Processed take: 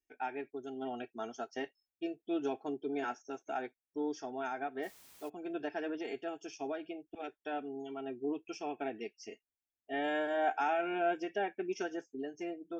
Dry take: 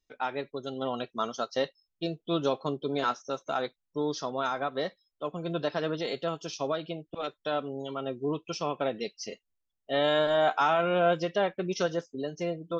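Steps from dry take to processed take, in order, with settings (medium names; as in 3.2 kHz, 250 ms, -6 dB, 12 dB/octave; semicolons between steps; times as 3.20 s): static phaser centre 810 Hz, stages 8; comb of notches 1 kHz; 4.82–5.28 s: added noise white -56 dBFS; trim -3 dB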